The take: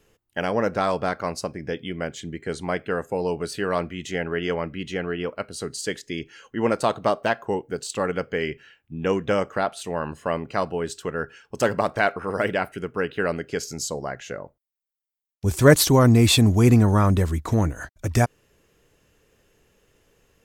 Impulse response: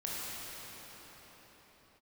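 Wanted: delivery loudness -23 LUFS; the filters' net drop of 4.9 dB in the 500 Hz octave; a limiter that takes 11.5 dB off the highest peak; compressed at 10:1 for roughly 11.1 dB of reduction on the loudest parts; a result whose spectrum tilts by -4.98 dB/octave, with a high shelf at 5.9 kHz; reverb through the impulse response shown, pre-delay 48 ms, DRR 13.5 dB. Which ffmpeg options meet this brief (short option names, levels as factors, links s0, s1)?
-filter_complex "[0:a]equalizer=f=500:t=o:g=-6,highshelf=f=5900:g=-6.5,acompressor=threshold=0.0708:ratio=10,alimiter=limit=0.0631:level=0:latency=1,asplit=2[s0][s1];[1:a]atrim=start_sample=2205,adelay=48[s2];[s1][s2]afir=irnorm=-1:irlink=0,volume=0.126[s3];[s0][s3]amix=inputs=2:normalize=0,volume=3.98"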